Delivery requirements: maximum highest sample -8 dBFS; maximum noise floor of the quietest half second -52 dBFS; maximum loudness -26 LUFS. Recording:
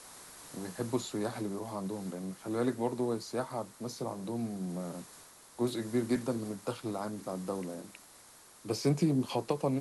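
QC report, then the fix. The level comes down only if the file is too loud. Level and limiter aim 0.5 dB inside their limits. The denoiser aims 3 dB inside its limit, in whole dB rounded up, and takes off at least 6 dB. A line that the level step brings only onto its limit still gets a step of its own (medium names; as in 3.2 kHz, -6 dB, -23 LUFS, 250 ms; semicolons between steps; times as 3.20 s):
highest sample -17.0 dBFS: pass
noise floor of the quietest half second -57 dBFS: pass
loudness -35.0 LUFS: pass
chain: none needed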